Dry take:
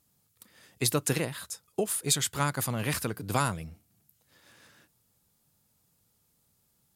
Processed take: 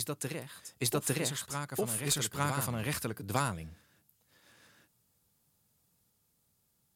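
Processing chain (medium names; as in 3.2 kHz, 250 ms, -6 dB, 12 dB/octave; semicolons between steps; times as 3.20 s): reverse echo 854 ms -5.5 dB; Chebyshev shaper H 2 -17 dB, 3 -16 dB, 5 -21 dB, 8 -43 dB, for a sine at -11 dBFS; trim -3.5 dB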